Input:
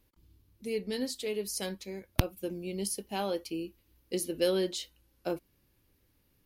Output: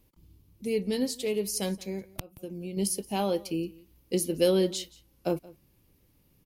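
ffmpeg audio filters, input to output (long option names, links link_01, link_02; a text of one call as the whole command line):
ffmpeg -i in.wav -filter_complex "[0:a]aecho=1:1:175:0.0794,asettb=1/sr,asplit=3[link_01][link_02][link_03];[link_01]atrim=end=2.104[link_04];[link_02]atrim=start=2.1:end=2.77,asetpts=PTS-STARTPTS,afade=type=in:duration=0.004:curve=qsin,afade=type=out:start_time=0.666:duration=0.004:curve=qsin,acompressor=threshold=-40dB:ratio=10[link_05];[link_03]atrim=start=2.766[link_06];[link_04][link_05]acrossfade=duration=0.004:curve1=hsin:curve2=qsin[link_07];[link_07][link_06]acrossfade=duration=0.004:curve1=qsin:curve2=hsin,equalizer=frequency=160:width_type=o:width=0.67:gain=6,equalizer=frequency=1600:width_type=o:width=0.67:gain=-6,equalizer=frequency=4000:width_type=o:width=0.67:gain=-3,volume=4.5dB" out.wav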